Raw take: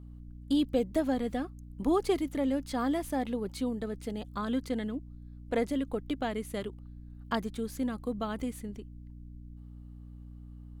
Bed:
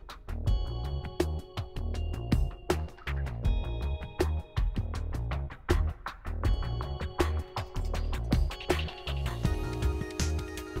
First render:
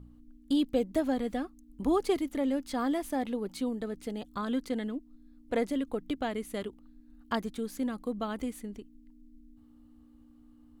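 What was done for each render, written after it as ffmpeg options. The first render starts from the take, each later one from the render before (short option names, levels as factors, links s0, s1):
-af "bandreject=f=60:t=h:w=4,bandreject=f=120:t=h:w=4,bandreject=f=180:t=h:w=4"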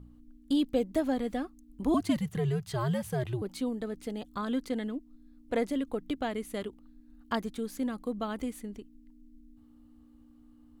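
-filter_complex "[0:a]asettb=1/sr,asplit=3[s0][s1][s2];[s0]atrim=end=1.944[s3];[s1]atrim=start=1.94:end=3.42,asetpts=PTS-STARTPTS,afade=t=in:d=0.004:c=qsin,afade=t=out:st=1.476:d=0.004:c=qsin,afreqshift=-120[s4];[s2]atrim=start=3.416[s5];[s3][s4]acrossfade=d=0.004:c1=hsin:c2=qsin[s6];[s6][s5]acrossfade=d=0.004:c1=qsin:c2=hsin"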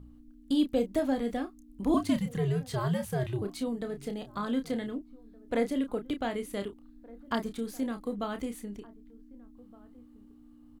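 -filter_complex "[0:a]asplit=2[s0][s1];[s1]adelay=30,volume=0.398[s2];[s0][s2]amix=inputs=2:normalize=0,asplit=2[s3][s4];[s4]adelay=1516,volume=0.0794,highshelf=f=4000:g=-34.1[s5];[s3][s5]amix=inputs=2:normalize=0"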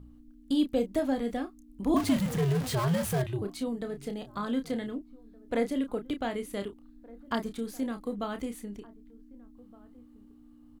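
-filter_complex "[0:a]asettb=1/sr,asplit=3[s0][s1][s2];[s0]atrim=end=1.964[s3];[s1]atrim=start=1.96:end=3.22,asetpts=PTS-STARTPTS,afade=t=in:d=0.004:c=qsin,afade=t=out:st=1.256:d=0.004:c=qsin,aeval=exprs='val(0)+0.5*0.0266*sgn(val(0))':c=same[s4];[s2]atrim=start=3.216[s5];[s3][s4]acrossfade=d=0.004:c1=hsin:c2=qsin[s6];[s6][s5]acrossfade=d=0.004:c1=qsin:c2=hsin"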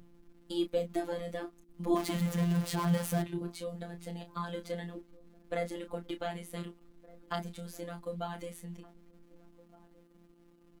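-filter_complex "[0:a]acrossover=split=200|3000[s0][s1][s2];[s0]aeval=exprs='val(0)*gte(abs(val(0)),0.00133)':c=same[s3];[s3][s1][s2]amix=inputs=3:normalize=0,afftfilt=real='hypot(re,im)*cos(PI*b)':imag='0':win_size=1024:overlap=0.75"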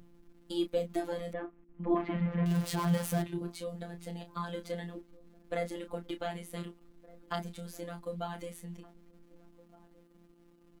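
-filter_complex "[0:a]asettb=1/sr,asplit=3[s0][s1][s2];[s0]atrim=end=1.334[s3];[s1]atrim=start=1.33:end=2.46,asetpts=PTS-STARTPTS,afade=t=in:d=0.004:c=qsin,afade=t=out:st=1.126:d=0.004:c=qsin,lowpass=f=2400:w=0.5412,lowpass=f=2400:w=1.3066[s4];[s2]atrim=start=2.456[s5];[s3][s4]acrossfade=d=0.004:c1=hsin:c2=qsin[s6];[s6][s5]acrossfade=d=0.004:c1=qsin:c2=hsin"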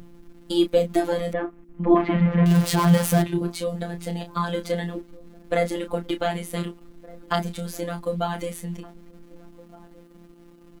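-af "volume=3.98"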